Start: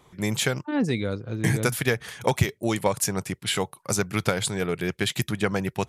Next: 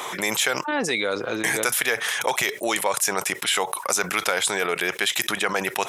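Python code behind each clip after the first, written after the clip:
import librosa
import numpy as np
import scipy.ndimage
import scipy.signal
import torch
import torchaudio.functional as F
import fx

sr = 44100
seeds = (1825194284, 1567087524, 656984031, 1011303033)

y = scipy.signal.sosfilt(scipy.signal.butter(2, 640.0, 'highpass', fs=sr, output='sos'), x)
y = fx.notch(y, sr, hz=4500.0, q=8.7)
y = fx.env_flatten(y, sr, amount_pct=70)
y = y * 10.0 ** (1.5 / 20.0)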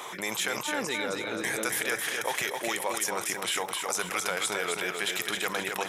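y = fx.echo_feedback(x, sr, ms=263, feedback_pct=46, wet_db=-4.5)
y = y * 10.0 ** (-8.0 / 20.0)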